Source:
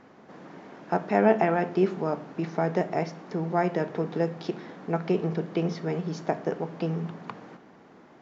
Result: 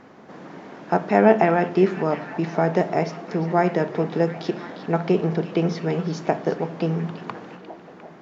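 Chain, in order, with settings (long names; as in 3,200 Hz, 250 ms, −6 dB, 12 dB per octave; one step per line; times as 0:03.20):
echo through a band-pass that steps 352 ms, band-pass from 3,500 Hz, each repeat −0.7 octaves, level −8 dB
level +5.5 dB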